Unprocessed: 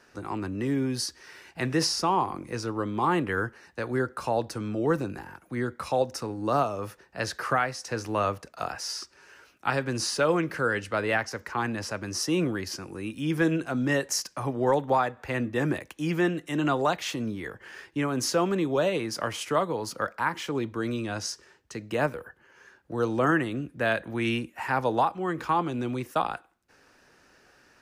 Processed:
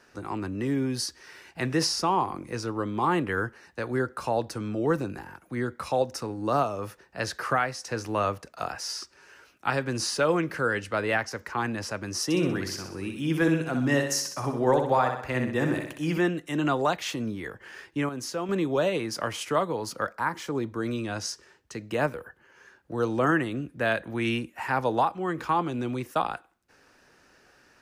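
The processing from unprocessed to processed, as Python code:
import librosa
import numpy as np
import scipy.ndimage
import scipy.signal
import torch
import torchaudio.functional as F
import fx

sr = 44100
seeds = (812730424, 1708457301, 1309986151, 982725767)

y = fx.echo_feedback(x, sr, ms=63, feedback_pct=49, wet_db=-6.0, at=(12.24, 16.18))
y = fx.peak_eq(y, sr, hz=2800.0, db=-7.0, octaves=0.81, at=(20.12, 20.86))
y = fx.edit(y, sr, fx.clip_gain(start_s=18.09, length_s=0.4, db=-7.0), tone=tone)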